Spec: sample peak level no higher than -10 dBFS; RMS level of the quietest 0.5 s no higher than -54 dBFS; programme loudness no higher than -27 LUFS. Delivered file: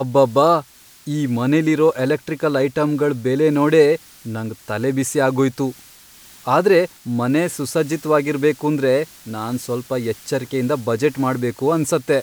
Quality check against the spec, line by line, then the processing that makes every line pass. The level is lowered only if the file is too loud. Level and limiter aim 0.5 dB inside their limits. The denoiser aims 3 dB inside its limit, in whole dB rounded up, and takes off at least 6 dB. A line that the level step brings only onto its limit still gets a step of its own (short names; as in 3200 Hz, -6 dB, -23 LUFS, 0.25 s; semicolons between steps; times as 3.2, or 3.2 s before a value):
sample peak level -3.0 dBFS: fail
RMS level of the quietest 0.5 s -45 dBFS: fail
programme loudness -19.0 LUFS: fail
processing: denoiser 6 dB, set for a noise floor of -45 dBFS; gain -8.5 dB